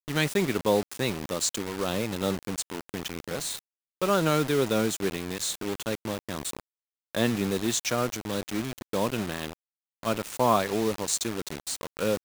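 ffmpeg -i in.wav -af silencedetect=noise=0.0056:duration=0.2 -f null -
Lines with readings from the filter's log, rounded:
silence_start: 3.59
silence_end: 4.02 | silence_duration: 0.43
silence_start: 6.60
silence_end: 7.15 | silence_duration: 0.55
silence_start: 9.53
silence_end: 10.03 | silence_duration: 0.50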